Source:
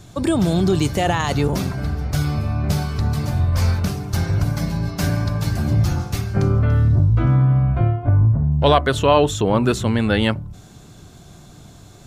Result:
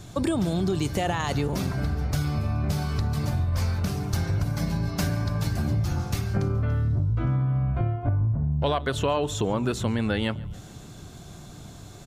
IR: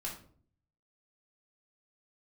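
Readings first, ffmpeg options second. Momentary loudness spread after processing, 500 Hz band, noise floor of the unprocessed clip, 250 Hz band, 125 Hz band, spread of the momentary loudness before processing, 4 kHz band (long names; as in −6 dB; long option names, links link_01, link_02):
15 LU, −8.5 dB, −44 dBFS, −7.0 dB, −7.5 dB, 7 LU, −7.5 dB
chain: -af "acompressor=threshold=-23dB:ratio=4,aecho=1:1:141|282|423|564:0.0708|0.0411|0.0238|0.0138"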